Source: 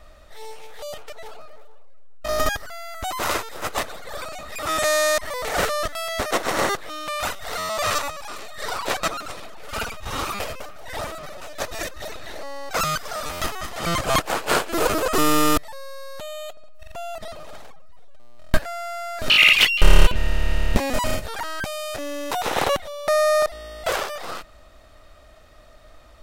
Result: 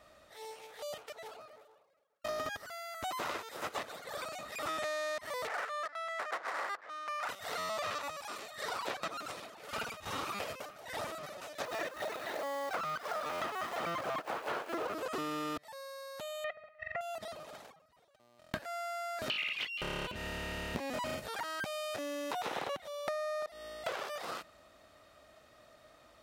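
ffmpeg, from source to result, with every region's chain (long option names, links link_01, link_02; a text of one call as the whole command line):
ffmpeg -i in.wav -filter_complex "[0:a]asettb=1/sr,asplit=3[link_01][link_02][link_03];[link_01]atrim=end=5.474[link_04];[link_02]atrim=start=5.47:end=7.29,asetpts=PTS-STARTPTS,afade=type=in:duration=0.004:curve=qsin,afade=type=out:start_time=1.816:duration=0.004:curve=qsin,highpass=800,highshelf=frequency=2400:width_type=q:width=1.5:gain=-6.5,adynamicsmooth=sensitivity=5:basefreq=1200[link_05];[link_03]atrim=start=7.286[link_06];[link_04][link_05]acrossfade=duration=0.004:curve1=hsin:curve2=qsin[link_07];[link_07][link_06]acrossfade=duration=0.004:curve1=qsin:curve2=hsin,asettb=1/sr,asplit=3[link_08][link_09][link_10];[link_08]atrim=end=11.654[link_11];[link_09]atrim=start=11.65:end=14.94,asetpts=PTS-STARTPTS,afade=type=in:duration=0.004:curve=qsin,afade=type=out:start_time=3.286:duration=0.004:curve=qsin,asplit=2[link_12][link_13];[link_13]highpass=frequency=720:poles=1,volume=18dB,asoftclip=type=tanh:threshold=-4.5dB[link_14];[link_12][link_14]amix=inputs=2:normalize=0,lowpass=frequency=1000:poles=1,volume=-6dB,acrusher=bits=3:mode=log:mix=0:aa=0.000001[link_15];[link_10]atrim=start=14.936[link_16];[link_11][link_15]acrossfade=duration=0.004:curve1=hsin:curve2=qsin[link_17];[link_17][link_16]acrossfade=duration=0.004:curve1=qsin:curve2=hsin,asettb=1/sr,asplit=3[link_18][link_19][link_20];[link_18]atrim=end=16.444[link_21];[link_19]atrim=start=16.44:end=17.01,asetpts=PTS-STARTPTS,afade=type=in:duration=0.004:curve=qsin,afade=type=out:start_time=0.566:duration=0.004:curve=qsin,lowpass=frequency=2000:width_type=q:width=9.2,aecho=1:1:1.6:0.89,atrim=end_sample=25137[link_22];[link_20]atrim=start=17.006[link_23];[link_21][link_22]acrossfade=duration=0.004:curve1=hsin:curve2=qsin[link_24];[link_24][link_23]acrossfade=duration=0.004:curve1=qsin:curve2=hsin,acrossover=split=5000[link_25][link_26];[link_26]acompressor=threshold=-39dB:ratio=4:attack=1:release=60[link_27];[link_25][link_27]amix=inputs=2:normalize=0,highpass=130,acompressor=threshold=-26dB:ratio=16,volume=-7.5dB" out.wav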